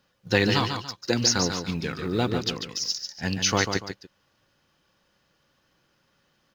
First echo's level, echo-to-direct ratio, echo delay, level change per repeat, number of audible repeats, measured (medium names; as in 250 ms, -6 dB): -7.0 dB, -6.5 dB, 144 ms, -10.0 dB, 2